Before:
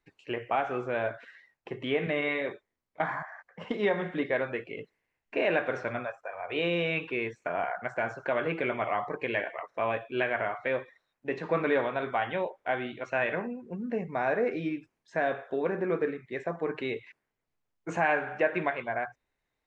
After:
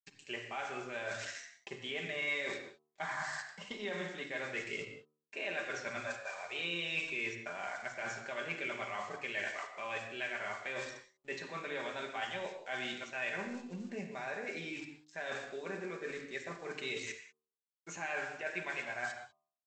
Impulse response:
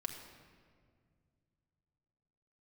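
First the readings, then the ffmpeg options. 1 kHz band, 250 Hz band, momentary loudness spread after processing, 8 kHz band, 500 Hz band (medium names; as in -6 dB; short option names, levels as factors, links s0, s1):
-10.5 dB, -12.0 dB, 8 LU, no reading, -13.0 dB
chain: -filter_complex "[0:a]aresample=16000,aeval=exprs='sgn(val(0))*max(abs(val(0))-0.00112,0)':c=same,aresample=44100,highshelf=f=3400:g=7,areverse,acompressor=threshold=0.00708:ratio=6,areverse,bandreject=f=76:t=h:w=4,bandreject=f=152:t=h:w=4,bandreject=f=228:t=h:w=4,bandreject=f=304:t=h:w=4,bandreject=f=380:t=h:w=4,bandreject=f=456:t=h:w=4,bandreject=f=532:t=h:w=4,bandreject=f=608:t=h:w=4,bandreject=f=684:t=h:w=4,bandreject=f=760:t=h:w=4,bandreject=f=836:t=h:w=4,bandreject=f=912:t=h:w=4,bandreject=f=988:t=h:w=4,bandreject=f=1064:t=h:w=4,bandreject=f=1140:t=h:w=4,bandreject=f=1216:t=h:w=4,bandreject=f=1292:t=h:w=4,crystalizer=i=6.5:c=0[s0];[1:a]atrim=start_sample=2205,afade=t=out:st=0.22:d=0.01,atrim=end_sample=10143,asetrate=37485,aresample=44100[s1];[s0][s1]afir=irnorm=-1:irlink=0,volume=1.26"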